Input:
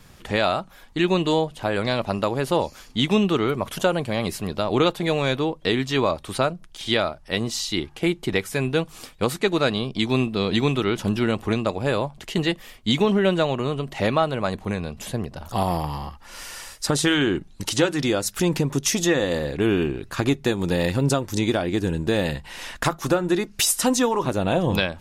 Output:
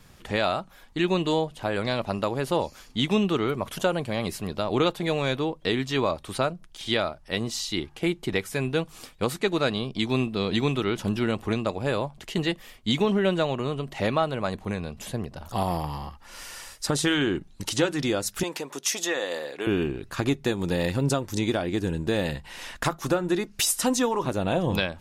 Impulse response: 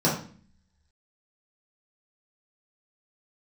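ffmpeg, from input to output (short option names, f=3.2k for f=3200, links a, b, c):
-filter_complex "[0:a]asettb=1/sr,asplit=3[a][b][c];[a]atrim=end=18.434[d];[b]atrim=start=18.43:end=19.67,asetpts=PTS-STARTPTS,afade=t=in:d=0.004:c=qsin,afade=t=out:st=1.236:d=0.004:c=qsin,highpass=510[e];[c]atrim=start=19.666[f];[d][e]acrossfade=d=0.004:c1=hsin:c2=qsin[g];[g][f]acrossfade=d=0.004:c1=qsin:c2=hsin,volume=-3.5dB"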